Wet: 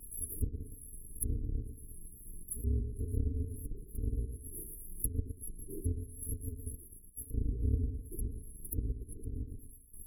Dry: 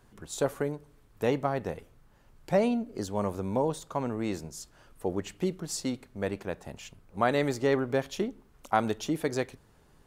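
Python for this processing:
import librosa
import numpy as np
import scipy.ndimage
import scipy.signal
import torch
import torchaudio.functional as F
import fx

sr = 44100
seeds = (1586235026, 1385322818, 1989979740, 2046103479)

y = fx.bit_reversed(x, sr, seeds[0], block=256)
y = fx.step_gate(y, sr, bpm=74, pattern='xxx.xxxx.', floor_db=-12.0, edge_ms=4.5)
y = fx.brickwall_bandstop(y, sr, low_hz=480.0, high_hz=10000.0)
y = fx.low_shelf(y, sr, hz=64.0, db=6.0)
y = fx.echo_feedback(y, sr, ms=114, feedback_pct=27, wet_db=-8.0)
y = fx.env_lowpass_down(y, sr, base_hz=460.0, full_db=-26.5)
y = fx.high_shelf(y, sr, hz=6900.0, db=8.5)
y = fx.vibrato(y, sr, rate_hz=7.0, depth_cents=37.0)
y = fx.upward_expand(y, sr, threshold_db=-57.0, expansion=1.5, at=(6.75, 7.33), fade=0.02)
y = F.gain(torch.from_numpy(y), 8.5).numpy()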